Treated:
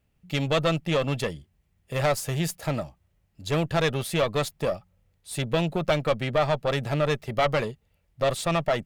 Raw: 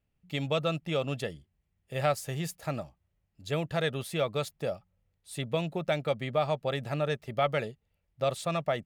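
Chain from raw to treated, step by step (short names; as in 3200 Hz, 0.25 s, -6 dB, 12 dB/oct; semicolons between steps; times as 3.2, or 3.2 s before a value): one diode to ground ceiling -31.5 dBFS; gain +8.5 dB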